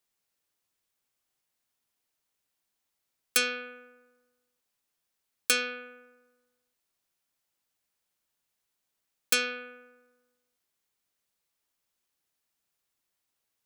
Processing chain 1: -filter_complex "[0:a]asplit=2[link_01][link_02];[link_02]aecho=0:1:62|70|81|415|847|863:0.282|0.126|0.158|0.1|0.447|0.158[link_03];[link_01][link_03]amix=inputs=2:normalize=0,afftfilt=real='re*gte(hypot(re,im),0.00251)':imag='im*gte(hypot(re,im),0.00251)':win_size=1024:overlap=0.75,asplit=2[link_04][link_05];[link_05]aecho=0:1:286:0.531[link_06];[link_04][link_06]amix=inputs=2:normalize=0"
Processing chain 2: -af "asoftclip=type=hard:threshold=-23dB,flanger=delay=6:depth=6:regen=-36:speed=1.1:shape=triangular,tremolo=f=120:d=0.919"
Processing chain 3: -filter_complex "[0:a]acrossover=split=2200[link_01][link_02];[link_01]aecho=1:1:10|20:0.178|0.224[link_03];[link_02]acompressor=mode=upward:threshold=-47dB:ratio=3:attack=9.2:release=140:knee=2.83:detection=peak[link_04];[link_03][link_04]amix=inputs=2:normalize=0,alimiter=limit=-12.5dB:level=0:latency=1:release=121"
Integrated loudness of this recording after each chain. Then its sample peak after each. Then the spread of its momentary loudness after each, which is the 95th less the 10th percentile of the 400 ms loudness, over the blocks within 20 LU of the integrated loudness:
−30.0, −39.0, −32.5 LKFS; −8.5, −23.5, −12.5 dBFS; 14, 16, 19 LU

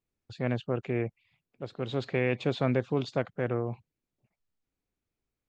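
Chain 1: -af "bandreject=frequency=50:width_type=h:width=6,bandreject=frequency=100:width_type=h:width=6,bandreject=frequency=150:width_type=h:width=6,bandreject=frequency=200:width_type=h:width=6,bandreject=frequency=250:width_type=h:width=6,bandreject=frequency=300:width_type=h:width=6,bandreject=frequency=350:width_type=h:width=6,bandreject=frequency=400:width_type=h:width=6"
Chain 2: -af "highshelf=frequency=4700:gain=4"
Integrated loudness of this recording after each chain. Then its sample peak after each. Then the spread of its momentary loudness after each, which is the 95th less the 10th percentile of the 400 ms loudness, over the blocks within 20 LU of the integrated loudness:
−32.0, −31.0 LKFS; −13.0, −12.5 dBFS; 10, 12 LU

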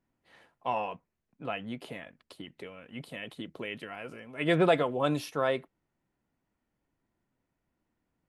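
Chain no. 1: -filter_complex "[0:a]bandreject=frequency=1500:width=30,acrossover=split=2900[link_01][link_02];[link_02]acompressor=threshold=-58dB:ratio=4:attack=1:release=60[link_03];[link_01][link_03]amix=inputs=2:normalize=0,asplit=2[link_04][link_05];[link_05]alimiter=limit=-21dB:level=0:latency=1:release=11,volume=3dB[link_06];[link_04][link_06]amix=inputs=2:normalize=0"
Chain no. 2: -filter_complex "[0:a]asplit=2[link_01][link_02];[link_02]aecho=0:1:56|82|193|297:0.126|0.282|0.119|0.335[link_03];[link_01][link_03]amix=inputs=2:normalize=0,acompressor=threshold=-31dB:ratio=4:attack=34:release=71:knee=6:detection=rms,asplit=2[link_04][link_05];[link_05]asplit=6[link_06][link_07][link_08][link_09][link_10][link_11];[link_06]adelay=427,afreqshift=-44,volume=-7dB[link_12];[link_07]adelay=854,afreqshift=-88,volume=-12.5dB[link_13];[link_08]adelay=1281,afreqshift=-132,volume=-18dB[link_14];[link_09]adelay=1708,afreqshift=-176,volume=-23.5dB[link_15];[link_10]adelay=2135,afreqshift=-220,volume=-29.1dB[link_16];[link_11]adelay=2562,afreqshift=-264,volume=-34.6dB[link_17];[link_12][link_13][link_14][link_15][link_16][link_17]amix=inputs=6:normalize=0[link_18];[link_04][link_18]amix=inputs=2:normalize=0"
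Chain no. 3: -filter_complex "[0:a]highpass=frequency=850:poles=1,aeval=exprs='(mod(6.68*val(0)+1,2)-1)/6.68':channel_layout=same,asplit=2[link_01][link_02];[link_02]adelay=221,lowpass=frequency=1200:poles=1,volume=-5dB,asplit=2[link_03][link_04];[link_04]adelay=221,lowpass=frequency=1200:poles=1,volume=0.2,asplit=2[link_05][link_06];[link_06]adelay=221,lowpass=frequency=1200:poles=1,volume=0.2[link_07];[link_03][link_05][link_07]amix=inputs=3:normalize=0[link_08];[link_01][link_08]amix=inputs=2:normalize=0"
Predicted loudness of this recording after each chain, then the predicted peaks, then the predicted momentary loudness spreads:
−26.5, −36.0, −36.0 LKFS; −8.5, −18.0, −15.0 dBFS; 18, 16, 19 LU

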